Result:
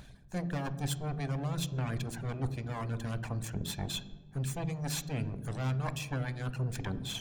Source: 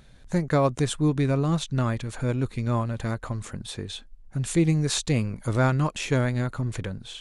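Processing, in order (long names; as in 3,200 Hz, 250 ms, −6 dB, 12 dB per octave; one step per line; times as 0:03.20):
lower of the sound and its delayed copy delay 1.2 ms
harmonic and percussive parts rebalanced percussive +5 dB
reversed playback
downward compressor 10 to 1, threshold −33 dBFS, peak gain reduction 17 dB
reversed playback
reverb reduction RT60 0.73 s
on a send: convolution reverb RT60 1.2 s, pre-delay 3 ms, DRR 11 dB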